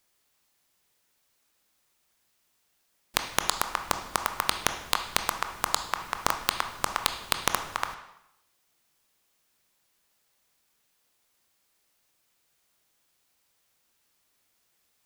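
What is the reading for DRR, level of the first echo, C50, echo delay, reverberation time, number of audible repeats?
6.0 dB, none, 8.5 dB, none, 0.80 s, none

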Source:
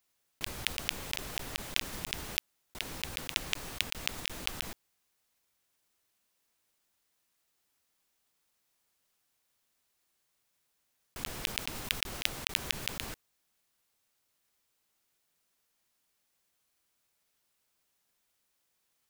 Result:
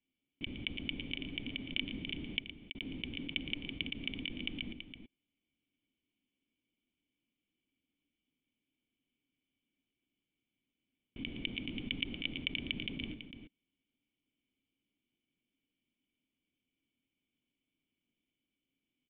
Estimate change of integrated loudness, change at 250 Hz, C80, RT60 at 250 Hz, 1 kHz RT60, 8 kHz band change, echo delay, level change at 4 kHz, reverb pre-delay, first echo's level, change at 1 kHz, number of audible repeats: -5.0 dB, +6.5 dB, none, none, none, under -35 dB, 0.115 s, -4.5 dB, none, -12.0 dB, -19.5 dB, 2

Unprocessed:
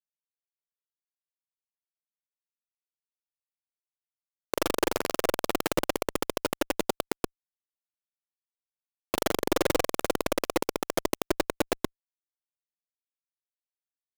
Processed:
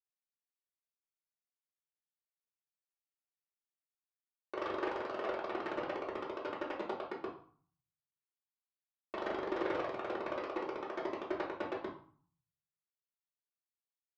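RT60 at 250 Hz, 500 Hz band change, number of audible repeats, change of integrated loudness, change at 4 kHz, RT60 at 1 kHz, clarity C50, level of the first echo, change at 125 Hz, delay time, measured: 0.80 s, -9.0 dB, none, -10.0 dB, -17.0 dB, 0.55 s, 7.0 dB, none, -16.0 dB, none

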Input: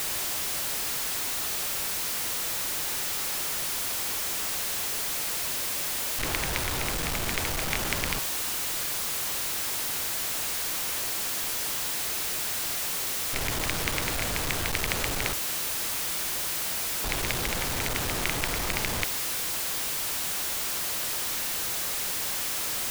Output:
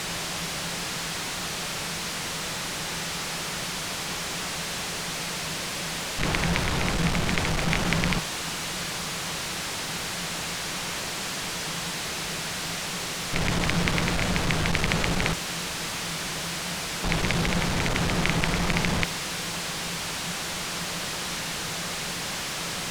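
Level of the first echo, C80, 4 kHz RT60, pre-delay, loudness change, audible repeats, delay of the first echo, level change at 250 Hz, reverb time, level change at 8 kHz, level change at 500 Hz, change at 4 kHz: none, none, none, none, -0.5 dB, none, none, +9.5 dB, none, -2.5 dB, +4.5 dB, +2.5 dB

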